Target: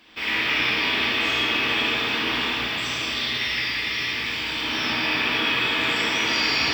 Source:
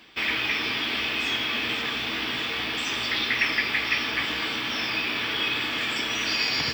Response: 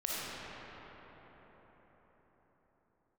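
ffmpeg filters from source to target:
-filter_complex "[0:a]asettb=1/sr,asplit=3[a][b][c];[a]atrim=end=2.454[d];[b]atrim=start=2.45:end=4.61,asetpts=PTS-STARTPTS,afade=t=in:d=0.004:c=qsin,afade=t=out:st=2.156:d=0.004:c=qsin,acrossover=split=150|3000[e][f][g];[f]acompressor=threshold=-38dB:ratio=3[h];[e][h][g]amix=inputs=3:normalize=0[i];[c]atrim=start=4.606[j];[d][i]acrossfade=d=0.004:c1=hsin:c2=qsin[k];[k][j]acrossfade=d=0.004:c1=qsin:c2=hsin[l];[1:a]atrim=start_sample=2205,asetrate=66150,aresample=44100[m];[l][m]afir=irnorm=-1:irlink=0,volume=2dB"

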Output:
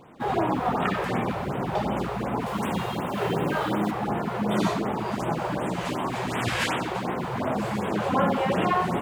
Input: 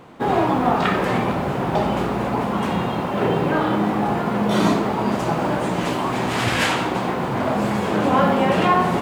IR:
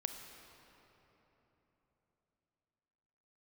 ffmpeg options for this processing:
-filter_complex "[0:a]asettb=1/sr,asplit=3[a][b][c];[a]atrim=end=2.464[d];[b]atrim=start=2.46:end=3.91,asetpts=PTS-STARTPTS,afade=t=in:d=0.004:c=qsin,afade=t=out:st=1.446:d=0.004:c=qsin,highshelf=f=4.1k:g=9[e];[c]atrim=start=3.906[f];[d][e]acrossfade=d=0.004:c1=hsin:c2=qsin[g];[g][f]acrossfade=d=0.004:c1=qsin:c2=hsin,afftfilt=real='re*(1-between(b*sr/1024,220*pow(5500/220,0.5+0.5*sin(2*PI*2.7*pts/sr))/1.41,220*pow(5500/220,0.5+0.5*sin(2*PI*2.7*pts/sr))*1.41))':imag='im*(1-between(b*sr/1024,220*pow(5500/220,0.5+0.5*sin(2*PI*2.7*pts/sr))/1.41,220*pow(5500/220,0.5+0.5*sin(2*PI*2.7*pts/sr))*1.41))':win_size=1024:overlap=0.75,volume=-5.5dB"

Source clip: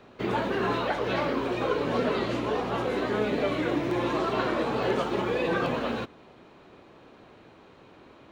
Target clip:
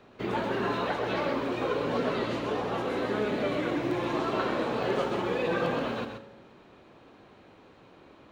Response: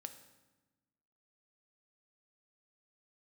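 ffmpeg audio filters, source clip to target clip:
-filter_complex "[0:a]asplit=2[a][b];[1:a]atrim=start_sample=2205,adelay=129[c];[b][c]afir=irnorm=-1:irlink=0,volume=-1dB[d];[a][d]amix=inputs=2:normalize=0,volume=-3dB"

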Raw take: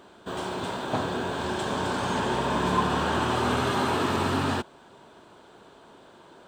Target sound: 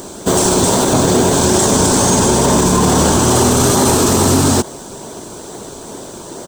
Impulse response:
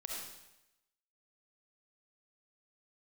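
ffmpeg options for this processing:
-filter_complex "[0:a]firequalizer=gain_entry='entry(400,0);entry(2100,-13);entry(6000,15)':delay=0.05:min_phase=1,asplit=2[a][b];[b]acrusher=samples=32:mix=1:aa=0.000001:lfo=1:lforange=32:lforate=2.3,volume=-8.5dB[c];[a][c]amix=inputs=2:normalize=0,alimiter=level_in=22dB:limit=-1dB:release=50:level=0:latency=1,volume=-2dB"

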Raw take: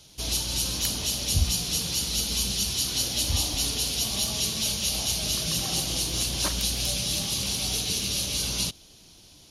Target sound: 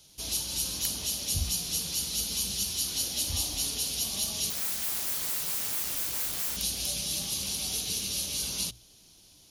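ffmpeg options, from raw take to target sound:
-filter_complex "[0:a]bandreject=f=60:t=h:w=6,bandreject=f=120:t=h:w=6,asettb=1/sr,asplit=3[a][b][c];[a]atrim=end=4.504[d];[b]atrim=start=4.5:end=6.57,asetpts=PTS-STARTPTS,afade=t=in:d=0.004:c=qsin,afade=t=out:st=2.066:d=0.004:c=qsin,aeval=exprs='(mod(17.8*val(0)+1,2)-1)/17.8':c=same[e];[c]atrim=start=6.566[f];[d][e]acrossfade=d=0.004:c1=hsin:c2=qsin[g];[g][f]acrossfade=d=0.004:c1=qsin:c2=hsin,crystalizer=i=1:c=0,volume=-7.5dB"

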